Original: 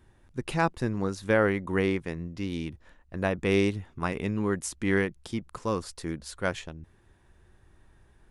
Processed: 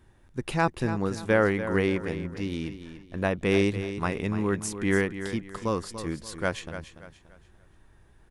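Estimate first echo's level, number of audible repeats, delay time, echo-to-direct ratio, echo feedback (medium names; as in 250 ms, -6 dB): -11.0 dB, 3, 289 ms, -10.5 dB, 34%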